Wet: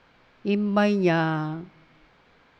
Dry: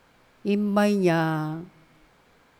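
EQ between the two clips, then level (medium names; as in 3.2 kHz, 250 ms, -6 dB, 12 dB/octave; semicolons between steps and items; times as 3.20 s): distance through air 230 m; treble shelf 2.3 kHz +10 dB; 0.0 dB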